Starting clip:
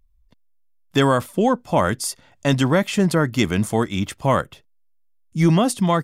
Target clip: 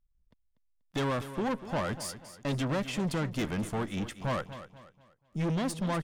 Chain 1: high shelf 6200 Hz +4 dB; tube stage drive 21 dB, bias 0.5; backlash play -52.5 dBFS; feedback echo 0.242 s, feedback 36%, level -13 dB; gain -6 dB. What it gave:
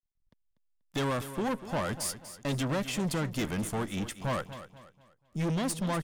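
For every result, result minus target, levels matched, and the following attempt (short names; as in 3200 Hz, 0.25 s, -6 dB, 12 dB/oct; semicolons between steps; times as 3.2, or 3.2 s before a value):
8000 Hz band +5.0 dB; backlash: distortion +7 dB
high shelf 6200 Hz -7 dB; tube stage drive 21 dB, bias 0.5; backlash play -52.5 dBFS; feedback echo 0.242 s, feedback 36%, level -13 dB; gain -6 dB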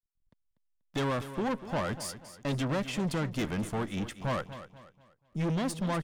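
backlash: distortion +7 dB
high shelf 6200 Hz -7 dB; tube stage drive 21 dB, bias 0.5; backlash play -60.5 dBFS; feedback echo 0.242 s, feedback 36%, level -13 dB; gain -6 dB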